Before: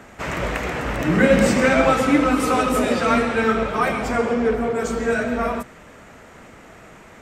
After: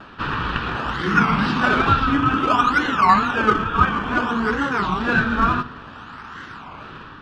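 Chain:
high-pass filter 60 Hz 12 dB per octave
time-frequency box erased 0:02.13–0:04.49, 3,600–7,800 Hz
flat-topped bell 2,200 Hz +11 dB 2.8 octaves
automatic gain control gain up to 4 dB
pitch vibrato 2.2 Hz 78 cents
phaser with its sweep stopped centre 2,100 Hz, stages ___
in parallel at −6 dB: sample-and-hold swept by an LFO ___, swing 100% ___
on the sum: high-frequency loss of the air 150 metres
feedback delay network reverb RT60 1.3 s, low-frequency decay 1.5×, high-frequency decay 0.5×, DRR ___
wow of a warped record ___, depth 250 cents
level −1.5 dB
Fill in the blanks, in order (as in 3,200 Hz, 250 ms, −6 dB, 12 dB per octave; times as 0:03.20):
6, 22×, 0.59 Hz, 16.5 dB, 33 1/3 rpm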